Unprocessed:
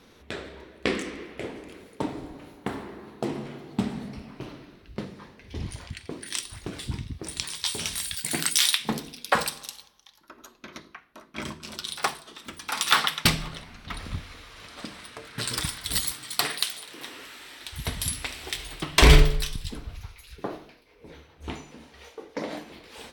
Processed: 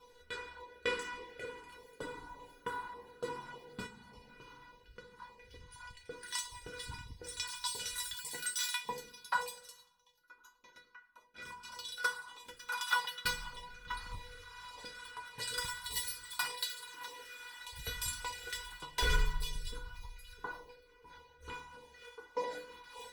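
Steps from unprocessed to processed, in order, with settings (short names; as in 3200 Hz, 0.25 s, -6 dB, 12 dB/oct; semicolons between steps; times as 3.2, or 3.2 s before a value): 3.86–6.07 compressor 5:1, threshold -39 dBFS, peak gain reduction 11.5 dB; band shelf 1100 Hz +9 dB 1.3 oct; reverb RT60 1.1 s, pre-delay 7 ms, DRR 12.5 dB; LFO notch saw down 1.7 Hz 400–1700 Hz; resonator 490 Hz, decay 0.17 s, harmonics all, mix 100%; vocal rider within 4 dB 0.5 s; gain +3 dB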